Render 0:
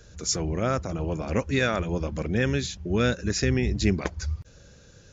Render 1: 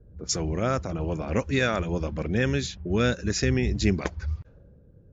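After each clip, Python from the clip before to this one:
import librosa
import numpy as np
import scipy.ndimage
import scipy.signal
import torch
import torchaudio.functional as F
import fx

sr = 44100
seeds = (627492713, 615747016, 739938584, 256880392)

y = fx.env_lowpass(x, sr, base_hz=340.0, full_db=-22.0)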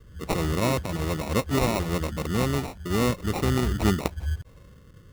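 y = fx.rider(x, sr, range_db=4, speed_s=2.0)
y = fx.sample_hold(y, sr, seeds[0], rate_hz=1600.0, jitter_pct=0)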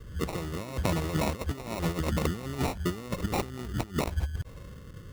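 y = fx.over_compress(x, sr, threshold_db=-30.0, ratio=-0.5)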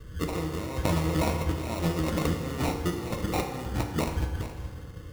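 y = x + 10.0 ** (-11.5 / 20.0) * np.pad(x, (int(421 * sr / 1000.0), 0))[:len(x)]
y = fx.rev_fdn(y, sr, rt60_s=1.5, lf_ratio=0.75, hf_ratio=0.65, size_ms=19.0, drr_db=3.0)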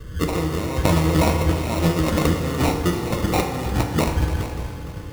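y = fx.echo_feedback(x, sr, ms=294, feedback_pct=57, wet_db=-13.5)
y = y * librosa.db_to_amplitude(8.0)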